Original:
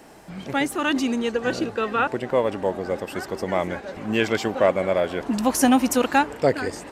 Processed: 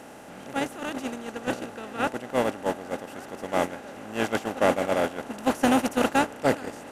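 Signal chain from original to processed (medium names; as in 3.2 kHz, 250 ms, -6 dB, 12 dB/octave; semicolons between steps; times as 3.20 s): spectral levelling over time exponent 0.4; gate -13 dBFS, range -16 dB; bass shelf 160 Hz +4 dB; in parallel at -12 dB: hard clipper -15.5 dBFS, distortion -7 dB; on the sum: trim -8 dB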